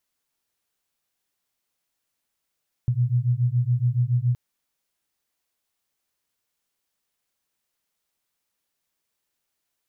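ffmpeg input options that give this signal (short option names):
-f lavfi -i "aevalsrc='0.0794*(sin(2*PI*119*t)+sin(2*PI*126.1*t))':d=1.47:s=44100"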